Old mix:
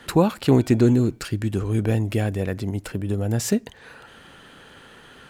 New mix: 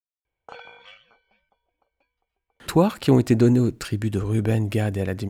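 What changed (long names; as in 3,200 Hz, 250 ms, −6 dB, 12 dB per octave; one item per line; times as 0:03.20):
speech: entry +2.60 s
background +8.0 dB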